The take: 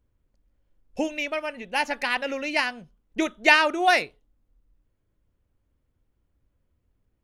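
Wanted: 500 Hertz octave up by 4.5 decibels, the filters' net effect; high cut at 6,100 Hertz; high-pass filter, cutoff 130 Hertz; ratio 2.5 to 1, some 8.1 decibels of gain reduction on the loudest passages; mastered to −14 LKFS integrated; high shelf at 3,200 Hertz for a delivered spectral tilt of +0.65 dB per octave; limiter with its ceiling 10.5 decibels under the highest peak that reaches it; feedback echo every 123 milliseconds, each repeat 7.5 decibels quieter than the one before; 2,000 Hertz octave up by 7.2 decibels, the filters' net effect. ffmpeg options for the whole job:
ffmpeg -i in.wav -af "highpass=130,lowpass=6100,equalizer=frequency=500:width_type=o:gain=5.5,equalizer=frequency=2000:width_type=o:gain=7,highshelf=frequency=3200:gain=5,acompressor=threshold=-17dB:ratio=2.5,alimiter=limit=-14dB:level=0:latency=1,aecho=1:1:123|246|369|492|615:0.422|0.177|0.0744|0.0312|0.0131,volume=11dB" out.wav

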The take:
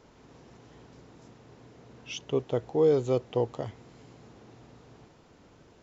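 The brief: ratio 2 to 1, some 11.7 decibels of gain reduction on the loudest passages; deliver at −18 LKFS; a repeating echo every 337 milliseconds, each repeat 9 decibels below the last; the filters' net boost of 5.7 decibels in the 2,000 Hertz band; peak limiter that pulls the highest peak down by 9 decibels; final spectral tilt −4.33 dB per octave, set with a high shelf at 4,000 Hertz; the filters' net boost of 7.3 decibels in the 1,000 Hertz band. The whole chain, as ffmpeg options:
ffmpeg -i in.wav -af "equalizer=frequency=1000:width_type=o:gain=8.5,equalizer=frequency=2000:width_type=o:gain=3.5,highshelf=frequency=4000:gain=7,acompressor=threshold=-39dB:ratio=2,alimiter=level_in=5.5dB:limit=-24dB:level=0:latency=1,volume=-5.5dB,aecho=1:1:337|674|1011|1348:0.355|0.124|0.0435|0.0152,volume=26.5dB" out.wav

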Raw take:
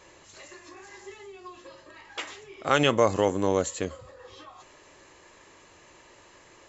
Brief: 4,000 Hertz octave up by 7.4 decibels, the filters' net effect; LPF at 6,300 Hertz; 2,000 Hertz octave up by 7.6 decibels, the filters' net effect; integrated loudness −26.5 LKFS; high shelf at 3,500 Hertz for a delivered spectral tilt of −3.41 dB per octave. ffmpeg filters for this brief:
ffmpeg -i in.wav -af "lowpass=6300,equalizer=frequency=2000:width_type=o:gain=7.5,highshelf=frequency=3500:gain=5.5,equalizer=frequency=4000:width_type=o:gain=3.5,volume=-3dB" out.wav

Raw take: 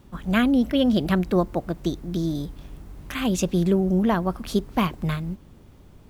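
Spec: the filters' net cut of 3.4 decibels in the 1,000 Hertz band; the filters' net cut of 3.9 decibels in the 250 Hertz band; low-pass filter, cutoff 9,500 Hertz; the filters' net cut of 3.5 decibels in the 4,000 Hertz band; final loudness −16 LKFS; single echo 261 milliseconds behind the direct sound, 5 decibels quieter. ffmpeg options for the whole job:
ffmpeg -i in.wav -af "lowpass=9500,equalizer=frequency=250:width_type=o:gain=-5,equalizer=frequency=1000:width_type=o:gain=-4,equalizer=frequency=4000:width_type=o:gain=-4.5,aecho=1:1:261:0.562,volume=10dB" out.wav

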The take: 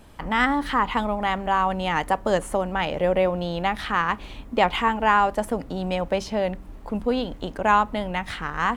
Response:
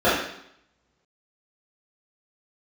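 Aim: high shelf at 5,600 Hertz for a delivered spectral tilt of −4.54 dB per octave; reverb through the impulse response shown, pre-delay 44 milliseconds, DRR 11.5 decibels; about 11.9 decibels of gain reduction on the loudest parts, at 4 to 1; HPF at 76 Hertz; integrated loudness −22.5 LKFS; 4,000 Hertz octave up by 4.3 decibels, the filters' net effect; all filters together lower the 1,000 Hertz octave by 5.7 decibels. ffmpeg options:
-filter_complex "[0:a]highpass=76,equalizer=frequency=1000:width_type=o:gain=-7.5,equalizer=frequency=4000:width_type=o:gain=5.5,highshelf=frequency=5600:gain=4.5,acompressor=threshold=-32dB:ratio=4,asplit=2[link_01][link_02];[1:a]atrim=start_sample=2205,adelay=44[link_03];[link_02][link_03]afir=irnorm=-1:irlink=0,volume=-34dB[link_04];[link_01][link_04]amix=inputs=2:normalize=0,volume=12dB"

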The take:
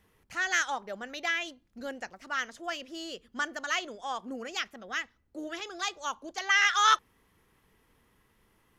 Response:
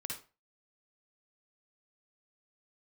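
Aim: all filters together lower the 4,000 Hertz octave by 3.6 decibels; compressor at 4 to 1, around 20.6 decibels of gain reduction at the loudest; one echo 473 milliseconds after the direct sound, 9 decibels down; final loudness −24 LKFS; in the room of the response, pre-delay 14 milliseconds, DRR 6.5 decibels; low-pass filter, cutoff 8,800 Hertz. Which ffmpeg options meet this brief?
-filter_complex "[0:a]lowpass=8800,equalizer=frequency=4000:width_type=o:gain=-5,acompressor=threshold=-45dB:ratio=4,aecho=1:1:473:0.355,asplit=2[link_01][link_02];[1:a]atrim=start_sample=2205,adelay=14[link_03];[link_02][link_03]afir=irnorm=-1:irlink=0,volume=-6dB[link_04];[link_01][link_04]amix=inputs=2:normalize=0,volume=21.5dB"

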